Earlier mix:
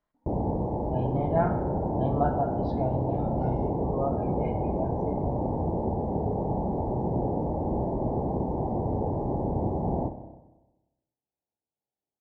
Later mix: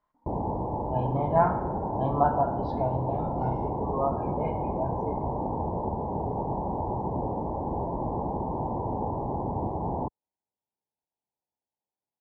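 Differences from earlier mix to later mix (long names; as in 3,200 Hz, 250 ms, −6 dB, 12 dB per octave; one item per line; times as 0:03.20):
background: send off
master: add parametric band 1,000 Hz +12 dB 0.54 octaves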